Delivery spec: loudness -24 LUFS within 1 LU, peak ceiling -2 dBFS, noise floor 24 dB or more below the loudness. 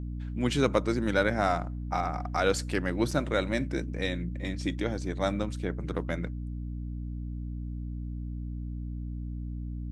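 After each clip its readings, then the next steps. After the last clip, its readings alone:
dropouts 1; longest dropout 3.7 ms; hum 60 Hz; harmonics up to 300 Hz; hum level -33 dBFS; loudness -31.5 LUFS; peak -9.5 dBFS; loudness target -24.0 LUFS
-> interpolate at 3.11, 3.7 ms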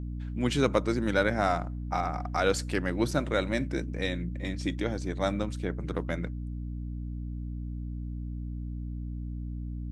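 dropouts 0; hum 60 Hz; harmonics up to 300 Hz; hum level -33 dBFS
-> de-hum 60 Hz, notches 5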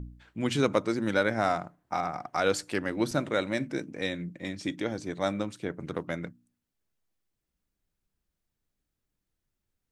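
hum none; loudness -30.5 LUFS; peak -10.0 dBFS; loudness target -24.0 LUFS
-> gain +6.5 dB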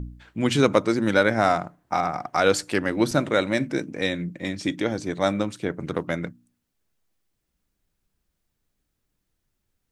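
loudness -24.0 LUFS; peak -3.5 dBFS; noise floor -78 dBFS

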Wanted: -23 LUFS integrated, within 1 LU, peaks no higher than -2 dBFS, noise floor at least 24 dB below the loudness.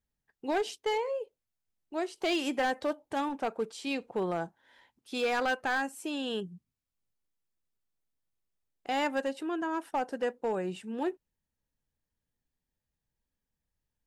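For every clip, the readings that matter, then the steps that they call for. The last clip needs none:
clipped 0.8%; flat tops at -24.0 dBFS; loudness -33.0 LUFS; peak -24.0 dBFS; loudness target -23.0 LUFS
-> clip repair -24 dBFS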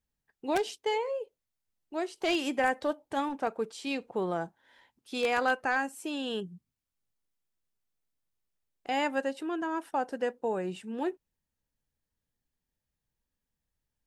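clipped 0.0%; loudness -32.0 LUFS; peak -15.0 dBFS; loudness target -23.0 LUFS
-> gain +9 dB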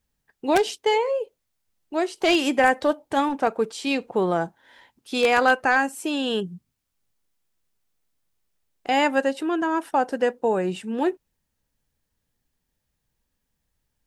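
loudness -23.0 LUFS; peak -6.0 dBFS; noise floor -78 dBFS

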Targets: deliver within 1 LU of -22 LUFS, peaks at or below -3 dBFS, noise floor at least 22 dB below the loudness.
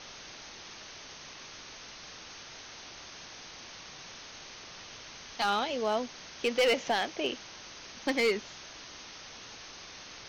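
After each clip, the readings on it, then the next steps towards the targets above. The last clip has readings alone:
clipped 0.3%; flat tops at -20.5 dBFS; noise floor -48 dBFS; noise floor target -58 dBFS; loudness -35.5 LUFS; peak -20.5 dBFS; loudness target -22.0 LUFS
-> clip repair -20.5 dBFS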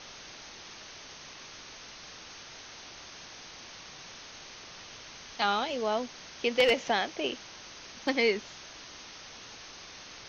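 clipped 0.0%; noise floor -48 dBFS; noise floor target -52 dBFS
-> denoiser 6 dB, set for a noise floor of -48 dBFS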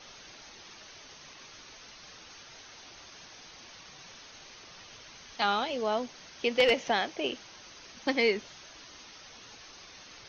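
noise floor -51 dBFS; noise floor target -52 dBFS
-> denoiser 6 dB, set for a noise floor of -51 dBFS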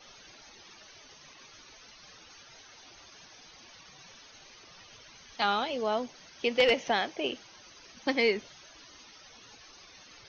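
noise floor -54 dBFS; loudness -29.5 LUFS; peak -11.5 dBFS; loudness target -22.0 LUFS
-> gain +7.5 dB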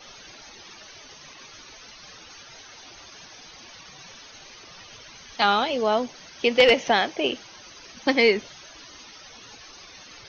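loudness -22.0 LUFS; peak -4.0 dBFS; noise floor -47 dBFS

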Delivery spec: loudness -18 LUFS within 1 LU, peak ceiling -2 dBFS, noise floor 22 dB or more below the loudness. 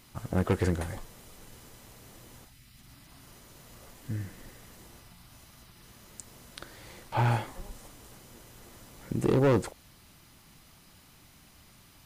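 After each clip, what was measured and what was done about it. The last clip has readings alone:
clipped 0.5%; flat tops at -19.0 dBFS; loudness -30.0 LUFS; peak -19.0 dBFS; loudness target -18.0 LUFS
-> clip repair -19 dBFS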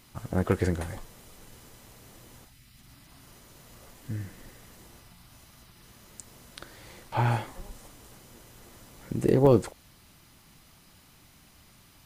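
clipped 0.0%; loudness -27.0 LUFS; peak -10.0 dBFS; loudness target -18.0 LUFS
-> gain +9 dB; limiter -2 dBFS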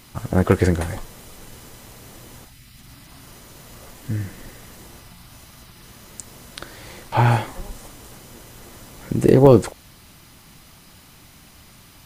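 loudness -18.5 LUFS; peak -2.0 dBFS; noise floor -48 dBFS

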